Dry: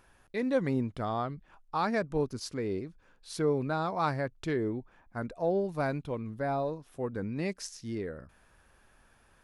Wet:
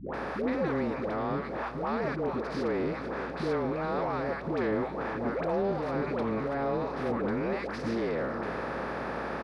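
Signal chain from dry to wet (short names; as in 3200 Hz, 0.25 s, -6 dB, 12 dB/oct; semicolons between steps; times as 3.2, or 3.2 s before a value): per-bin compression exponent 0.4; HPF 150 Hz 12 dB/oct; high shelf 4000 Hz +9.5 dB; limiter -22 dBFS, peak gain reduction 12 dB; dispersion highs, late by 0.141 s, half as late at 590 Hz; in parallel at -3.5 dB: hard clip -34 dBFS, distortion -8 dB; on the sum: hum 60 Hz, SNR 20 dB; air absorption 390 m; outdoor echo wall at 75 m, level -11 dB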